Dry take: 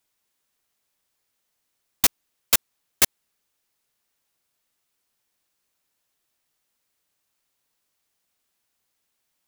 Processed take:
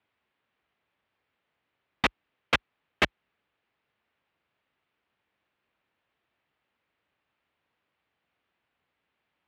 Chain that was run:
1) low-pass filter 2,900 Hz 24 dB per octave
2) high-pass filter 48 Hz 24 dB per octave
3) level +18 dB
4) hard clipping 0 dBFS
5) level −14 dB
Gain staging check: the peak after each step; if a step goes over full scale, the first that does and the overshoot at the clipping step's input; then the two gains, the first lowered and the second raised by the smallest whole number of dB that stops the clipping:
−12.5, −13.0, +5.0, 0.0, −14.0 dBFS
step 3, 5.0 dB
step 3 +13 dB, step 5 −9 dB

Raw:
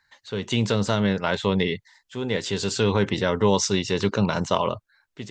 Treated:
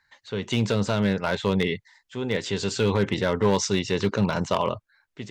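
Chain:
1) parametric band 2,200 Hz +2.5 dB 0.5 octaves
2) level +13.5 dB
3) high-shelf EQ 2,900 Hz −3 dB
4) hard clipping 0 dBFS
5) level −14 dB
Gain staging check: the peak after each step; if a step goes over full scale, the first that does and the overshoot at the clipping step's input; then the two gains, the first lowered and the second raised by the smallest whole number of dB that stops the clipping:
−7.0, +6.5, +6.0, 0.0, −14.0 dBFS
step 2, 6.0 dB
step 2 +7.5 dB, step 5 −8 dB

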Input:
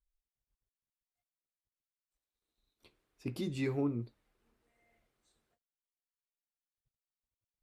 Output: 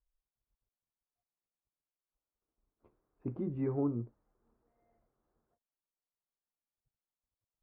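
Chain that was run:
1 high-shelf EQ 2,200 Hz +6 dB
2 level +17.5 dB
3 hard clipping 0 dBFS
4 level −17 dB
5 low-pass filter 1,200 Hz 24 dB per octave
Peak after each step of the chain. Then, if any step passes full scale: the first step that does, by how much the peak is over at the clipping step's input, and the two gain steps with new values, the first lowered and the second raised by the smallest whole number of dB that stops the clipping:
−23.0, −5.5, −5.5, −22.5, −23.0 dBFS
no step passes full scale

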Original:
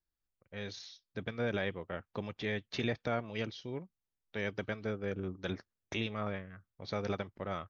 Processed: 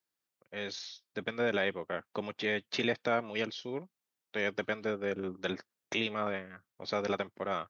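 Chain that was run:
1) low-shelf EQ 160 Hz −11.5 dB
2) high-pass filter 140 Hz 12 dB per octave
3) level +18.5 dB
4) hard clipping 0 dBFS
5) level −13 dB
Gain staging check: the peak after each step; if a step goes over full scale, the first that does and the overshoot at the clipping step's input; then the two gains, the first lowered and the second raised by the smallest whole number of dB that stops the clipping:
−21.0, −22.5, −4.0, −4.0, −17.0 dBFS
no step passes full scale

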